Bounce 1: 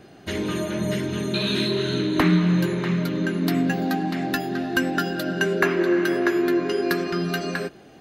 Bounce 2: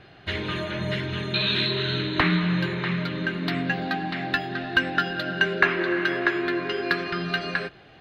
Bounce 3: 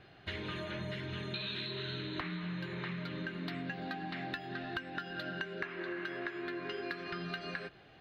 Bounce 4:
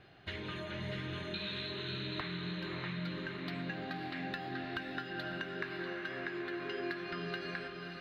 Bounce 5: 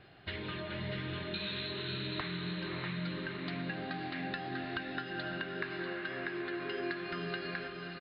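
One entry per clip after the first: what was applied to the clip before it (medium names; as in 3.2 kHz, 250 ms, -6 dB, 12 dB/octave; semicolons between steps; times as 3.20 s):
FFT filter 120 Hz 0 dB, 230 Hz -11 dB, 1.8 kHz +2 dB, 4 kHz +1 dB, 6.2 kHz -16 dB, 12 kHz -23 dB; trim +2 dB
compression 10:1, threshold -28 dBFS, peak gain reduction 15 dB; trim -8 dB
echo that smears into a reverb 571 ms, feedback 47%, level -4.5 dB; trim -1.5 dB
resampled via 11.025 kHz; trim +1.5 dB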